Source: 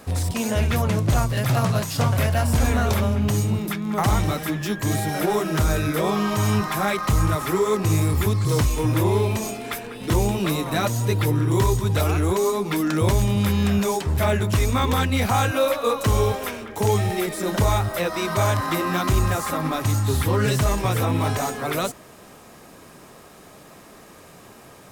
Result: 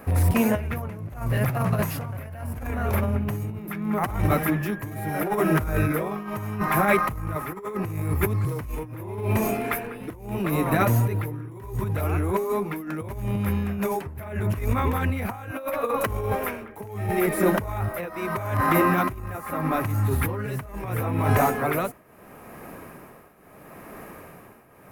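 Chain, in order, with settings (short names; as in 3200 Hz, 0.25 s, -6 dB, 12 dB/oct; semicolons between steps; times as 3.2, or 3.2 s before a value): band shelf 5200 Hz -14 dB; negative-ratio compressor -23 dBFS, ratio -0.5; tremolo triangle 0.76 Hz, depth 85%; gain +3 dB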